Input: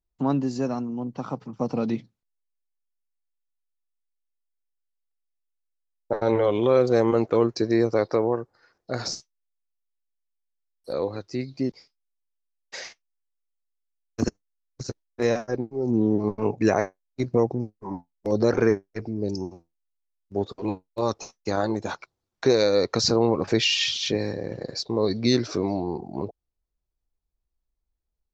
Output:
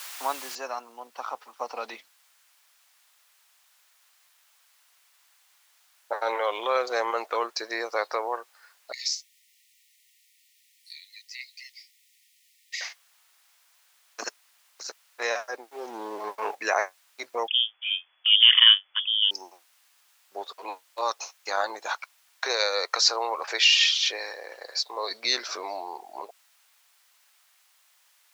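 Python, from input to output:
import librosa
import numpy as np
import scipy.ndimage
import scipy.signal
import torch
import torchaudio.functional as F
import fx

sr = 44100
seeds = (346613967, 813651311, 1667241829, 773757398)

y = fx.noise_floor_step(x, sr, seeds[0], at_s=0.55, before_db=-42, after_db=-65, tilt_db=0.0)
y = fx.brickwall_highpass(y, sr, low_hz=1800.0, at=(8.92, 12.81))
y = fx.leveller(y, sr, passes=1, at=(15.7, 16.55))
y = fx.freq_invert(y, sr, carrier_hz=3400, at=(17.48, 19.31))
y = fx.highpass(y, sr, hz=360.0, slope=12, at=(21.88, 25.11))
y = scipy.signal.sosfilt(scipy.signal.bessel(4, 1200.0, 'highpass', norm='mag', fs=sr, output='sos'), y)
y = fx.tilt_eq(y, sr, slope=-2.0)
y = y * 10.0 ** (8.0 / 20.0)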